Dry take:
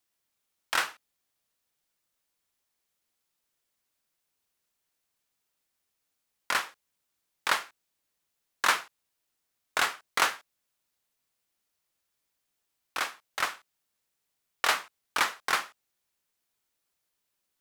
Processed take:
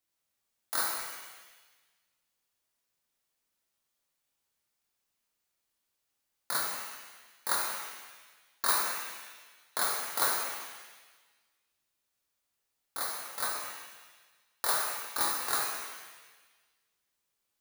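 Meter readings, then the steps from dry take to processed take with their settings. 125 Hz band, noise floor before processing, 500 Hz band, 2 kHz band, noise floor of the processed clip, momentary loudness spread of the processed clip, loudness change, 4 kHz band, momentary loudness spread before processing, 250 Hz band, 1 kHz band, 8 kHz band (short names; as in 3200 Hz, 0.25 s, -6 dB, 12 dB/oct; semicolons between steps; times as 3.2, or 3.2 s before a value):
n/a, -81 dBFS, -1.5 dB, -7.0 dB, -82 dBFS, 18 LU, -2.0 dB, -3.5 dB, 11 LU, -1.0 dB, -3.5 dB, +4.0 dB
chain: FFT order left unsorted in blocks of 16 samples; shimmer reverb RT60 1.3 s, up +7 st, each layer -8 dB, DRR -2.5 dB; gain -6 dB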